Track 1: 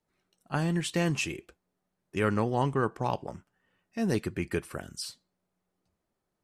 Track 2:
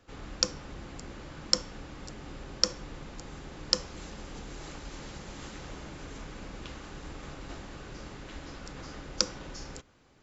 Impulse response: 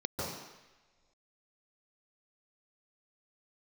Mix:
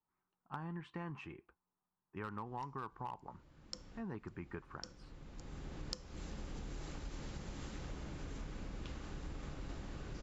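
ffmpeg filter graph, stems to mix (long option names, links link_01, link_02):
-filter_complex "[0:a]lowpass=1100,lowshelf=frequency=760:width_type=q:width=3:gain=-7,volume=22.5dB,asoftclip=hard,volume=-22.5dB,volume=-5dB,asplit=2[link_01][link_02];[1:a]lowshelf=frequency=270:gain=8,adelay=2200,volume=-6.5dB[link_03];[link_02]apad=whole_len=547932[link_04];[link_03][link_04]sidechaincompress=threshold=-56dB:ratio=10:attack=16:release=830[link_05];[link_01][link_05]amix=inputs=2:normalize=0,acompressor=threshold=-40dB:ratio=8"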